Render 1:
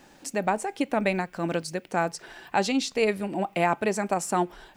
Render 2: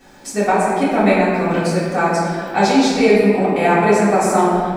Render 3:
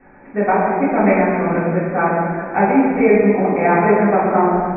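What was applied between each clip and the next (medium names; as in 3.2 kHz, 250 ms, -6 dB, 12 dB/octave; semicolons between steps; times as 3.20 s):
band-stop 2.8 kHz, Q 8.9; reverberation RT60 2.2 s, pre-delay 3 ms, DRR -13 dB; trim -2.5 dB
steep low-pass 2.4 kHz 96 dB/octave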